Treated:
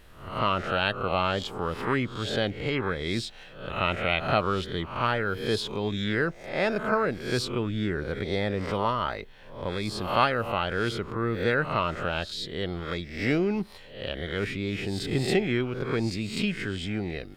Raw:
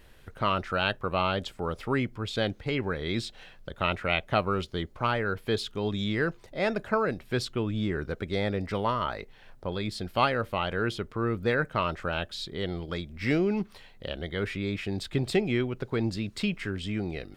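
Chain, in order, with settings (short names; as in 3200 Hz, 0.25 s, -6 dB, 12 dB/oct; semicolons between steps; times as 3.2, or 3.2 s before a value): spectral swells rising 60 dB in 0.54 s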